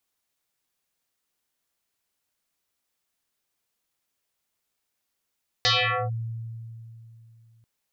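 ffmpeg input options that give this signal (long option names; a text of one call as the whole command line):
ffmpeg -f lavfi -i "aevalsrc='0.141*pow(10,-3*t/3.06)*sin(2*PI*114*t+8.2*clip(1-t/0.45,0,1)*sin(2*PI*5.44*114*t))':duration=1.99:sample_rate=44100" out.wav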